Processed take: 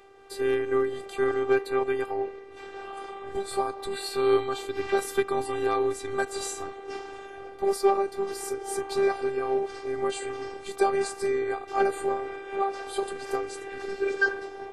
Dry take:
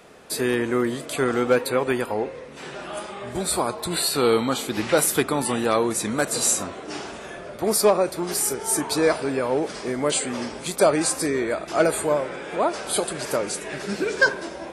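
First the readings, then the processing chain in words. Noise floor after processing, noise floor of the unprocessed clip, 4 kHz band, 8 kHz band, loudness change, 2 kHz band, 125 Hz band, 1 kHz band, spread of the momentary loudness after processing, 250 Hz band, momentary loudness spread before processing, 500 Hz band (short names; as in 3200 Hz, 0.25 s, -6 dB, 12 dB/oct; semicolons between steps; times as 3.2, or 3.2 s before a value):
-43 dBFS, -38 dBFS, -10.5 dB, -15.5 dB, -5.5 dB, -5.5 dB, -13.0 dB, -2.5 dB, 12 LU, -8.5 dB, 13 LU, -3.0 dB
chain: LPF 2000 Hz 6 dB/oct; tremolo 3.9 Hz, depth 28%; robotiser 395 Hz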